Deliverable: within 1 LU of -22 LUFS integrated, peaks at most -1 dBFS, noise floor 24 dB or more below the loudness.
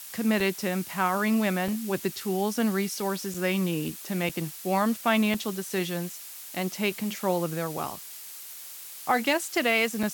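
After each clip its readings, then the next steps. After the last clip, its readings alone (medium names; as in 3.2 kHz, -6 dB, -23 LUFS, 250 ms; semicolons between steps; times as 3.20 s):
dropouts 6; longest dropout 4.2 ms; noise floor -43 dBFS; noise floor target -52 dBFS; loudness -27.5 LUFS; peak level -11.0 dBFS; loudness target -22.0 LUFS
-> interpolate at 0.40/1.68/3.34/4.29/5.34/10.03 s, 4.2 ms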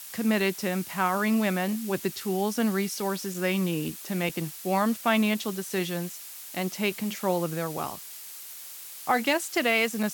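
dropouts 0; noise floor -43 dBFS; noise floor target -52 dBFS
-> noise reduction 9 dB, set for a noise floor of -43 dBFS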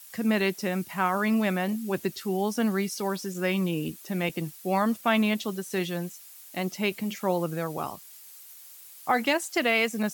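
noise floor -48 dBFS; noise floor target -52 dBFS
-> noise reduction 6 dB, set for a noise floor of -48 dBFS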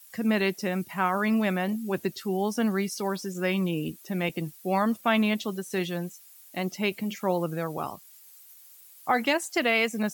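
noise floor -52 dBFS; loudness -28.0 LUFS; peak level -11.0 dBFS; loudness target -22.0 LUFS
-> trim +6 dB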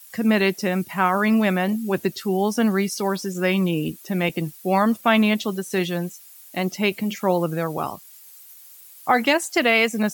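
loudness -22.0 LUFS; peak level -5.0 dBFS; noise floor -46 dBFS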